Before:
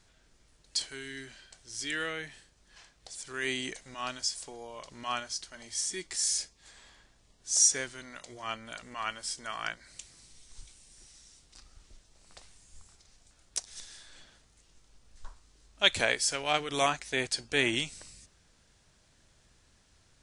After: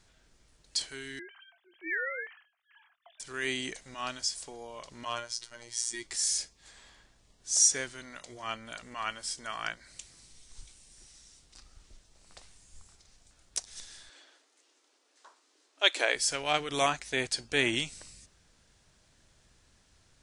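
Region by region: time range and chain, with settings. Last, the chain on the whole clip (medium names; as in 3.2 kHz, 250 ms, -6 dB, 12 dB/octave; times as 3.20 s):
1.19–3.20 s: formants replaced by sine waves + doubling 22 ms -14 dB
5.05–6.03 s: comb 6.4 ms, depth 64% + robot voice 118 Hz
14.09–16.15 s: brick-wall FIR high-pass 260 Hz + treble shelf 8.3 kHz -6.5 dB
whole clip: none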